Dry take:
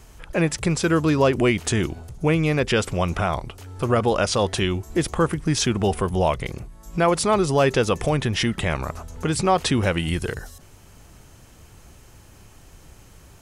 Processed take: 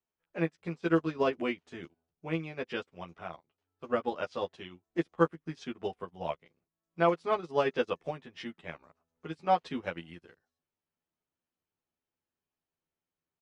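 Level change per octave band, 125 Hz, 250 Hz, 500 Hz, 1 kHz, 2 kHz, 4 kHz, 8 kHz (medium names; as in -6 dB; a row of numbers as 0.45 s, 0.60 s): -19.0 dB, -12.5 dB, -10.5 dB, -9.0 dB, -12.0 dB, -18.0 dB, under -30 dB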